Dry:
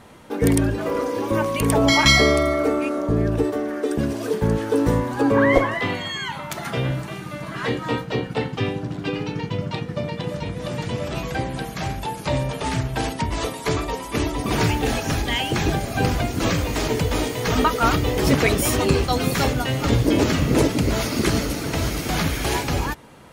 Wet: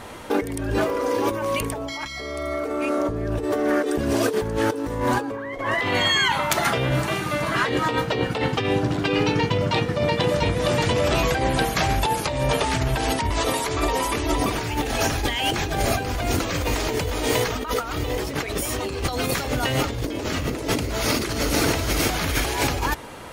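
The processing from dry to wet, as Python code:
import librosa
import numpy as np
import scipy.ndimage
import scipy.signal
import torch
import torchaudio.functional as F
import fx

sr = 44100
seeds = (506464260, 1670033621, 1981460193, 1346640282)

y = fx.peak_eq(x, sr, hz=170.0, db=-8.0, octaves=1.2)
y = fx.over_compress(y, sr, threshold_db=-29.0, ratio=-1.0)
y = y * librosa.db_to_amplitude(5.0)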